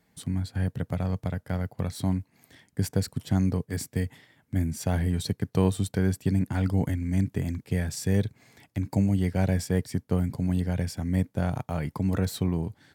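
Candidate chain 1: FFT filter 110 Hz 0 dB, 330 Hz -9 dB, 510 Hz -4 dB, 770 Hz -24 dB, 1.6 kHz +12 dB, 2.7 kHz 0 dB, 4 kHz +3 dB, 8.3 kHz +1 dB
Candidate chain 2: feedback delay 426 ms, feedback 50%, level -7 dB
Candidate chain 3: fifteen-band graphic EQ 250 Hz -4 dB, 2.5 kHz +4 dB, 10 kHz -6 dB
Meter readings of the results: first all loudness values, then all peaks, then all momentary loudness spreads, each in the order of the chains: -30.0 LUFS, -27.5 LUFS, -29.5 LUFS; -13.0 dBFS, -10.0 dBFS, -11.0 dBFS; 6 LU, 7 LU, 7 LU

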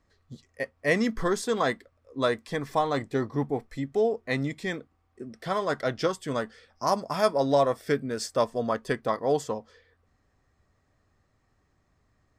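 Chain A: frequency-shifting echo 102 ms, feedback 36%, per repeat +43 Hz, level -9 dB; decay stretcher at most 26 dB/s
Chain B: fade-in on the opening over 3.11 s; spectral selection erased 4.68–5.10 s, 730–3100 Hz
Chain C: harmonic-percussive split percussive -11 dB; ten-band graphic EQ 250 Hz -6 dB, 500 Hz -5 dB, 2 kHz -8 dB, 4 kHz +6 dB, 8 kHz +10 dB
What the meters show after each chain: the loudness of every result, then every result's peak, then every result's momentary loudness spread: -25.5 LUFS, -29.0 LUFS, -35.5 LUFS; -9.5 dBFS, -10.0 dBFS, -13.0 dBFS; 12 LU, 12 LU, 15 LU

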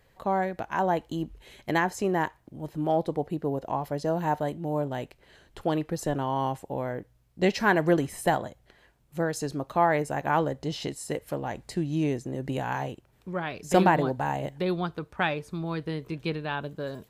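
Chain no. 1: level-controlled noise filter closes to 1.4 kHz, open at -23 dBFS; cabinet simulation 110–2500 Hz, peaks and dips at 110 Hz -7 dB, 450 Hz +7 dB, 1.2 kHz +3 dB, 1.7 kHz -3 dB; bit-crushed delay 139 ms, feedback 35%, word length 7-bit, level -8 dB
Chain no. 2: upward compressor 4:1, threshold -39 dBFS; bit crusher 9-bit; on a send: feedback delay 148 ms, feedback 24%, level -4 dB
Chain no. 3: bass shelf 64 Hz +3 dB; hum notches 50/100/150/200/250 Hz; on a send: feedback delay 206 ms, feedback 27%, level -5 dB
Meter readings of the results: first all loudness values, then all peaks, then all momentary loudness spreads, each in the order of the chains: -27.0 LUFS, -27.5 LUFS, -27.5 LUFS; -5.5 dBFS, -6.0 dBFS, -6.0 dBFS; 11 LU, 11 LU, 11 LU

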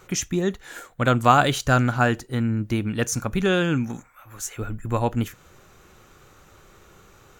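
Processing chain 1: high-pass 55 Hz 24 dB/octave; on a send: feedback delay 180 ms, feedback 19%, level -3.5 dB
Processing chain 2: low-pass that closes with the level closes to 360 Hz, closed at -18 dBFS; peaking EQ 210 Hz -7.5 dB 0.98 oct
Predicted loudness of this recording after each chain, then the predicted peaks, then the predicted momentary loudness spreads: -21.5 LUFS, -29.5 LUFS; -2.0 dBFS, -13.5 dBFS; 14 LU, 11 LU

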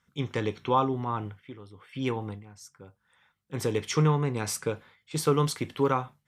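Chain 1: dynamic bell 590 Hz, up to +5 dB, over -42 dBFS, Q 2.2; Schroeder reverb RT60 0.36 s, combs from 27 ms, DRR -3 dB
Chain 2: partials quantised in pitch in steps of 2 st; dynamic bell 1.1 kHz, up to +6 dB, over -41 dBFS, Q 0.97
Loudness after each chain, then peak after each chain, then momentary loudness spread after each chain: -23.0 LUFS, -25.5 LUFS; -6.0 dBFS, -7.0 dBFS; 18 LU, 18 LU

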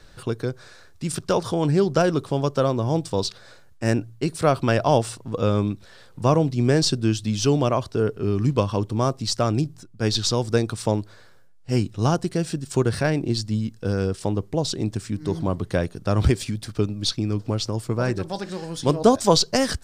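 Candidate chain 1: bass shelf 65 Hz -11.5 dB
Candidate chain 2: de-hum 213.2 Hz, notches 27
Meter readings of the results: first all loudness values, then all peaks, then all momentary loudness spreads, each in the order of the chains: -24.0 LUFS, -23.5 LUFS; -4.0 dBFS, -4.0 dBFS; 9 LU, 9 LU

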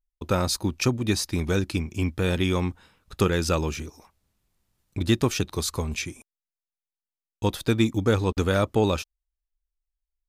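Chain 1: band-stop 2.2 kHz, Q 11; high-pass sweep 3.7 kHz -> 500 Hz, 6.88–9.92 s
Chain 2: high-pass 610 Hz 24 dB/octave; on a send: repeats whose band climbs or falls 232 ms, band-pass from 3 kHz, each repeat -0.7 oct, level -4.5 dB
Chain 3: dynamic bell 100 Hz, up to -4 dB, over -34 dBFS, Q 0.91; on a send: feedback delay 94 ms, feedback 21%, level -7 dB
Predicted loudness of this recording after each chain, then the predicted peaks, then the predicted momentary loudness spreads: -29.0 LUFS, -31.5 LUFS, -26.0 LUFS; -10.0 dBFS, -13.0 dBFS, -9.5 dBFS; 12 LU, 15 LU, 10 LU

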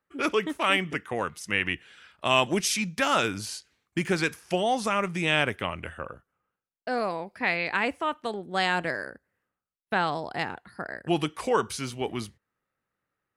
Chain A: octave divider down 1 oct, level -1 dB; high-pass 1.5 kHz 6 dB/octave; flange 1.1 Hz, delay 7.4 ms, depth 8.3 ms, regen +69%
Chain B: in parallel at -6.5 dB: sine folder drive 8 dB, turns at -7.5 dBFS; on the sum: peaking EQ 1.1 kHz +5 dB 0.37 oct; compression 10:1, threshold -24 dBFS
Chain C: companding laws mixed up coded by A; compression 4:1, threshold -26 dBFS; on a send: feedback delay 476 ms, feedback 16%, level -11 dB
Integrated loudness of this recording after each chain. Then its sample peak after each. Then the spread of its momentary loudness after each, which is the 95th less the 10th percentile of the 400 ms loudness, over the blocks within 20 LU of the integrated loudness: -35.5 LUFS, -29.0 LUFS, -32.5 LUFS; -14.0 dBFS, -10.5 dBFS, -13.0 dBFS; 15 LU, 6 LU, 13 LU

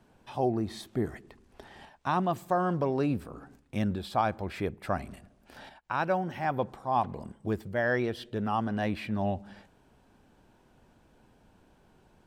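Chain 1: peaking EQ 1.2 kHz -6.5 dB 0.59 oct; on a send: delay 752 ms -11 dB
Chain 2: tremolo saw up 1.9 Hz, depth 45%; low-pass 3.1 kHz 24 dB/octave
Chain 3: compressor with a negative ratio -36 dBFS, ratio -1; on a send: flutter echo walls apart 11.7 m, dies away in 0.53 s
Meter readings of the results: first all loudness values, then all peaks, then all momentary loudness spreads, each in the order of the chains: -32.5 LUFS, -33.5 LUFS, -37.5 LUFS; -16.0 dBFS, -14.5 dBFS, -19.5 dBFS; 15 LU, 11 LU, 21 LU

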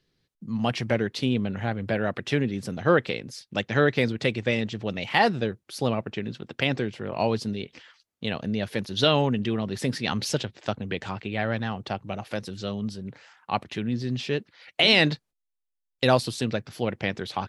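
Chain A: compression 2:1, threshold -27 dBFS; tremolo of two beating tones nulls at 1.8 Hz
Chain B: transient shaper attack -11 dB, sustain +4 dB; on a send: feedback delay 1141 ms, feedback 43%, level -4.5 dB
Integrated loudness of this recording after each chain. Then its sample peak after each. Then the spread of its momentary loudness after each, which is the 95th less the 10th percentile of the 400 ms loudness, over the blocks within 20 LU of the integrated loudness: -34.0 LUFS, -27.0 LUFS; -11.0 dBFS, -4.5 dBFS; 10 LU, 11 LU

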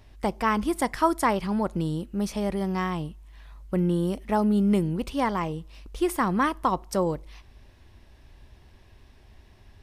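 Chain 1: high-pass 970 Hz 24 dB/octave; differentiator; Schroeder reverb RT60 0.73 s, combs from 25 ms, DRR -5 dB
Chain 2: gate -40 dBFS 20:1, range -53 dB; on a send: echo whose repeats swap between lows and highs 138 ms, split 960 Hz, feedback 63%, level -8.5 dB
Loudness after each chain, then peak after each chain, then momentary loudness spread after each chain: -36.5 LUFS, -26.0 LUFS; -18.0 dBFS, -9.0 dBFS; 18 LU, 12 LU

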